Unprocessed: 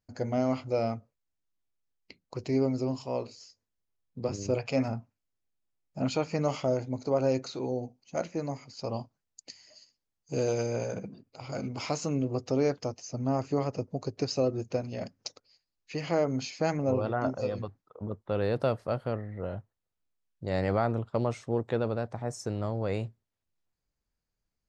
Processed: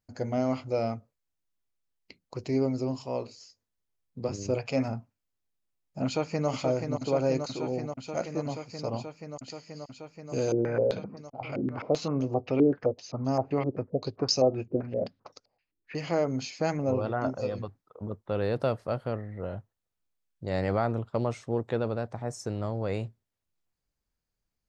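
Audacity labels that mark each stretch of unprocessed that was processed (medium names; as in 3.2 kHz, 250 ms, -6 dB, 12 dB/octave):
6.050000	6.490000	echo throw 480 ms, feedback 85%, level -5.5 dB
10.520000	15.950000	step-sequenced low-pass 7.7 Hz 340–5700 Hz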